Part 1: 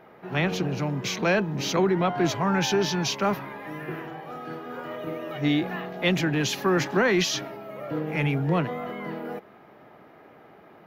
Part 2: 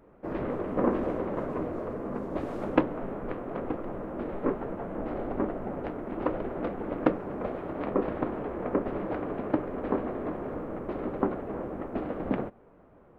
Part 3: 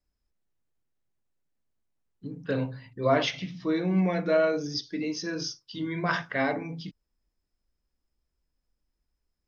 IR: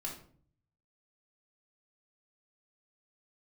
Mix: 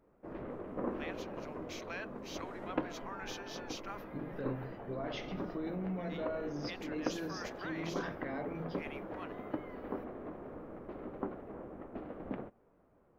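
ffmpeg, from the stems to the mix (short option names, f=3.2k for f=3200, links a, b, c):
-filter_complex "[0:a]highpass=1.1k,highshelf=f=5.1k:g=6,adelay=650,volume=-12.5dB[a];[1:a]volume=-11.5dB[b];[2:a]adelay=1900,volume=-5.5dB[c];[a][c]amix=inputs=2:normalize=0,highshelf=f=2.3k:g=-10.5,alimiter=level_in=8.5dB:limit=-24dB:level=0:latency=1:release=51,volume=-8.5dB,volume=0dB[d];[b][d]amix=inputs=2:normalize=0"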